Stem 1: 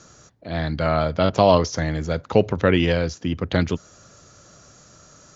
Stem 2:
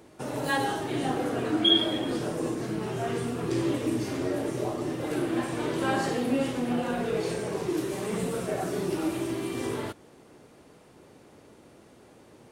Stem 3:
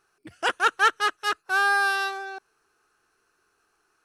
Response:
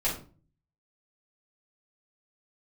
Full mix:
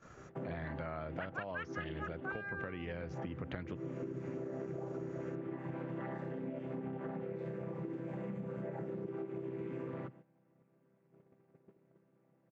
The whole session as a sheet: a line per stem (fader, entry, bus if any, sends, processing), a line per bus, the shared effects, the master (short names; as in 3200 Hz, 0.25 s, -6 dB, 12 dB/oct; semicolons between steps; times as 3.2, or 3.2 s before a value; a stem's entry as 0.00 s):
-4.0 dB, 0.00 s, bus A, no send, dry
-3.5 dB, 0.15 s, bus A, no send, chord vocoder major triad, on C3
-8.5 dB, 0.75 s, no bus, no send, reverb removal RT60 1.5 s; auto-wah 530–2500 Hz, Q 2.4, up, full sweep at -18.5 dBFS
bus A: 0.0 dB, compressor 6:1, threshold -32 dBFS, peak gain reduction 17 dB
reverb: off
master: gate -54 dBFS, range -13 dB; resonant high shelf 3100 Hz -12 dB, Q 1.5; compressor, threshold -38 dBFS, peak gain reduction 11.5 dB